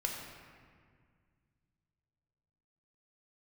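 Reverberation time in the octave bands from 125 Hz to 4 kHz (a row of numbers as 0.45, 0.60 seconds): 3.4, 2.7, 2.0, 1.9, 1.8, 1.2 seconds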